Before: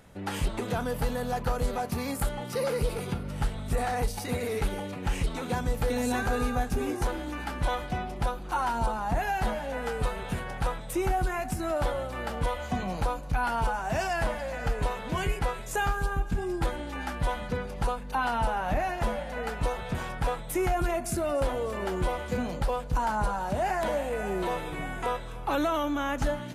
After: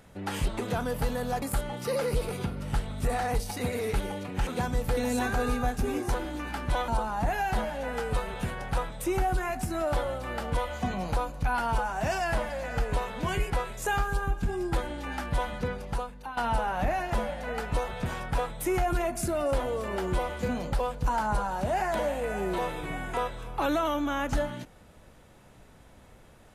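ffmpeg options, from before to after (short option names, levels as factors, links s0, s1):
-filter_complex "[0:a]asplit=5[s0][s1][s2][s3][s4];[s0]atrim=end=1.422[s5];[s1]atrim=start=2.098:end=5.152[s6];[s2]atrim=start=5.398:end=7.812[s7];[s3]atrim=start=8.768:end=18.26,asetpts=PTS-STARTPTS,afade=t=out:st=8.832:d=0.66:silence=0.199526[s8];[s4]atrim=start=18.26,asetpts=PTS-STARTPTS,afade=t=in:d=0.004:c=hsin:silence=0.199526[s9];[s5][s6]acrossfade=d=0.004:c1=hsin:c2=hsin[s10];[s10][s7]acrossfade=d=0.004:c1=hsin:c2=hsin[s11];[s8][s9]concat=n=2:v=0:a=1[s12];[s11][s12]acrossfade=d=0.004:c1=hsin:c2=hsin"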